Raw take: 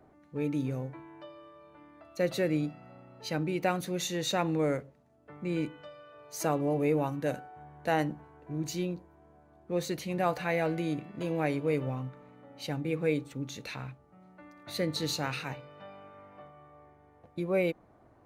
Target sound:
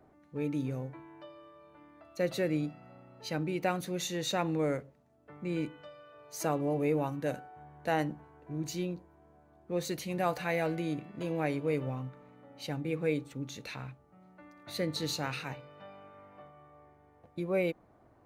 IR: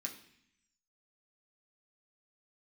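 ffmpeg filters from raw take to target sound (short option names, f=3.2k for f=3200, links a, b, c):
-filter_complex "[0:a]asettb=1/sr,asplit=3[a][b][c];[a]atrim=end=9.854[d];[b]atrim=start=9.85:end=10.76,asetpts=PTS-STARTPTS,afade=t=in:d=0.004:c=qsin,afade=t=out:st=0.906:d=0.004:c=qsin,highshelf=f=4.9k:g=5[e];[c]atrim=start=10.756[f];[d][e]acrossfade=d=0.004:c1=hsin:c2=qsin[g];[g][f]acrossfade=d=0.004:c1=qsin:c2=hsin,volume=-2dB"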